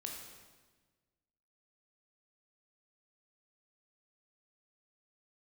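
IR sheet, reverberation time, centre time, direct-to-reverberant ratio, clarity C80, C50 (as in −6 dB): 1.3 s, 56 ms, 0.0 dB, 4.5 dB, 3.0 dB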